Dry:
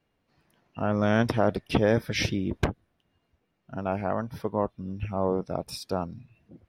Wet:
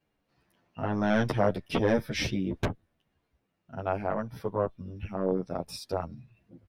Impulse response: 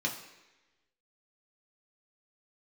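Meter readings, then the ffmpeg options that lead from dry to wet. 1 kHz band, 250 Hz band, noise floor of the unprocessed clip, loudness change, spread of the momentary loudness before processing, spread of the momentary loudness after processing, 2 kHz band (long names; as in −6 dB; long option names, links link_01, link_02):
−2.0 dB, −2.5 dB, −75 dBFS, −2.0 dB, 12 LU, 15 LU, −2.5 dB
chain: -filter_complex "[0:a]aeval=exprs='0.316*(cos(1*acos(clip(val(0)/0.316,-1,1)))-cos(1*PI/2))+0.0631*(cos(2*acos(clip(val(0)/0.316,-1,1)))-cos(2*PI/2))+0.002*(cos(6*acos(clip(val(0)/0.316,-1,1)))-cos(6*PI/2))':channel_layout=same,asplit=2[link_01][link_02];[link_02]adelay=10.3,afreqshift=-1[link_03];[link_01][link_03]amix=inputs=2:normalize=1"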